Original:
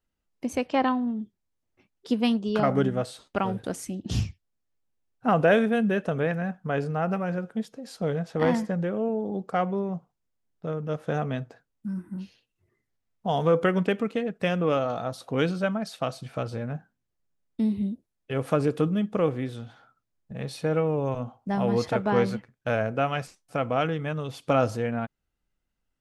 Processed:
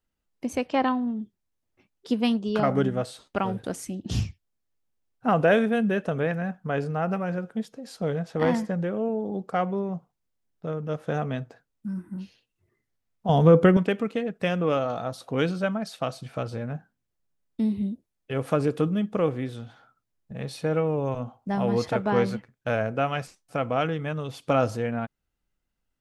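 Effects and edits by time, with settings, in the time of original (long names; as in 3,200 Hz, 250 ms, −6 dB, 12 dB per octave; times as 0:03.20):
0:13.29–0:13.77: low-shelf EQ 400 Hz +11.5 dB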